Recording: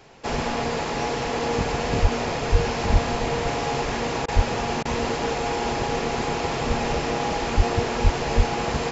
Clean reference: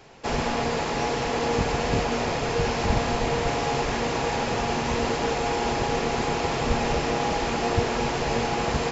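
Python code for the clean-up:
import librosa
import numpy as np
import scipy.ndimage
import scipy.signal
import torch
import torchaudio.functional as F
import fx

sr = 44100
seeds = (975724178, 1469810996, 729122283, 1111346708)

y = fx.fix_deplosive(x, sr, at_s=(2.01, 2.51, 2.92, 4.35, 7.56, 8.03, 8.36))
y = fx.fix_interpolate(y, sr, at_s=(4.26, 4.83), length_ms=21.0)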